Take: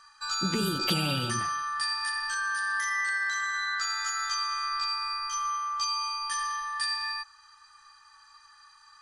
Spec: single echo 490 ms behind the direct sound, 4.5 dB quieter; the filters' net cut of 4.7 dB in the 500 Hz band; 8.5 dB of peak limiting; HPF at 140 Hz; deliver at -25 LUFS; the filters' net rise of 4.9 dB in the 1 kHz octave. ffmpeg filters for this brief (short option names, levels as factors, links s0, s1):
-af "highpass=140,equalizer=f=500:t=o:g=-8,equalizer=f=1000:t=o:g=7.5,alimiter=limit=0.0794:level=0:latency=1,aecho=1:1:490:0.596,volume=1.41"